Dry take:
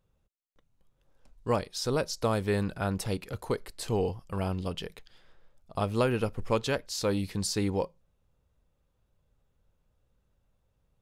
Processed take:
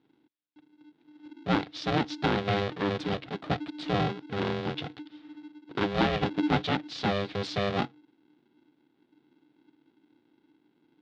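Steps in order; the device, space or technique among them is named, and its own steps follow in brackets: ring modulator pedal into a guitar cabinet (polarity switched at an audio rate 300 Hz; cabinet simulation 85–4200 Hz, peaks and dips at 140 Hz +6 dB, 300 Hz +9 dB, 980 Hz -3 dB, 3.6 kHz +5 dB)

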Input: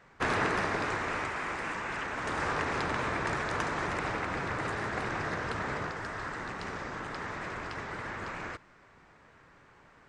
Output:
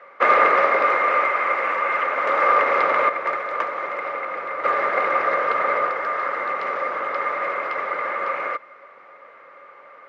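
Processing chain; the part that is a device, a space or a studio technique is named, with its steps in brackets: 3.09–4.64 s: gate -30 dBFS, range -8 dB; tin-can telephone (band-pass 490–2600 Hz; small resonant body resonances 550/1200/2100 Hz, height 16 dB, ringing for 45 ms); trim +8.5 dB

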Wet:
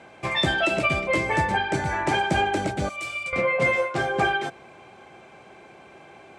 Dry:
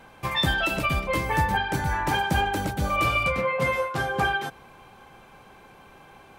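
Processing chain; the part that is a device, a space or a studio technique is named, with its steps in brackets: car door speaker (cabinet simulation 92–8500 Hz, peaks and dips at 360 Hz +8 dB, 650 Hz +8 dB, 1 kHz -3 dB, 2.2 kHz +6 dB, 7.9 kHz +4 dB); 2.89–3.33 s: pre-emphasis filter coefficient 0.9

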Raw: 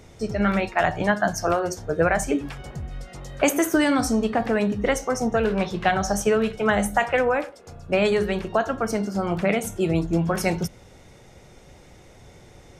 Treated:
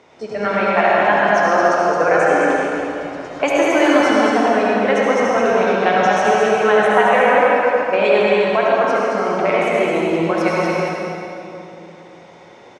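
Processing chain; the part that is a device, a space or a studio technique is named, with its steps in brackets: station announcement (band-pass 380–3900 Hz; peaking EQ 1 kHz +6 dB 0.28 oct; loudspeakers at several distances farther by 75 m -5 dB, 98 m -10 dB; reverberation RT60 2.8 s, pre-delay 61 ms, DRR -4.5 dB); bass shelf 160 Hz +4.5 dB; trim +2 dB

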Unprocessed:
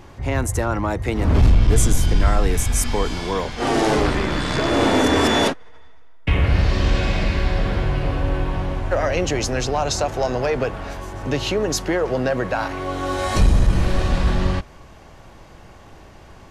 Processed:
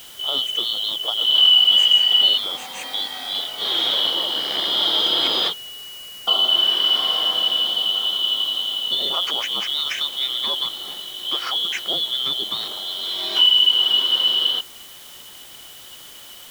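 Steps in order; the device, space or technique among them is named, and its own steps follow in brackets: 2.37–3.35 s: high-pass 190 Hz 24 dB/octave; split-band scrambled radio (four frequency bands reordered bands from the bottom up 2413; band-pass 360–3100 Hz; white noise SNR 22 dB); trim +1 dB

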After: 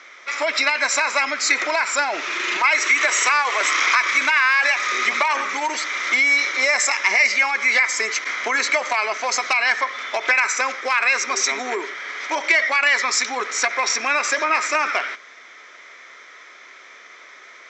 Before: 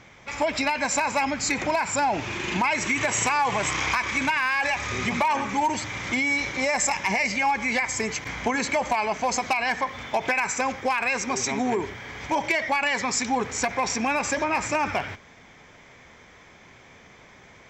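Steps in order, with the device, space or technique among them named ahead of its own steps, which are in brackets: 2.57–3.61 s: steep high-pass 270 Hz; phone speaker on a table (cabinet simulation 380–8000 Hz, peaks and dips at 480 Hz -4 dB, 830 Hz -9 dB, 1.3 kHz +10 dB, 2 kHz +7 dB, 3.9 kHz +6 dB, 5.6 kHz +5 dB); trim +3.5 dB

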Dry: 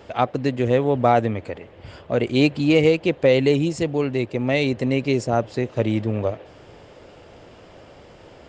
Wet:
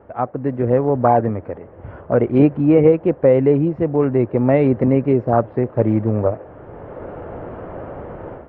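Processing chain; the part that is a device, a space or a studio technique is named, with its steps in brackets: action camera in a waterproof case (low-pass 1.5 kHz 24 dB/octave; level rider gain up to 16 dB; trim -1.5 dB; AAC 48 kbps 48 kHz)

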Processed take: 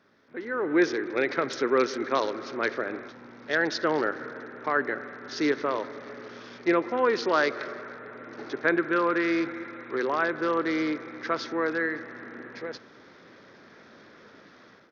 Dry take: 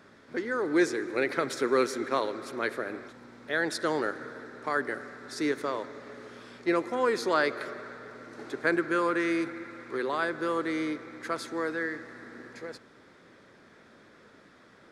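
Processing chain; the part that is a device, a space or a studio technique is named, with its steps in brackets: Bluetooth headset (high-pass 110 Hz 6 dB/octave; level rider gain up to 13 dB; resampled via 16 kHz; trim -8.5 dB; SBC 64 kbps 48 kHz)

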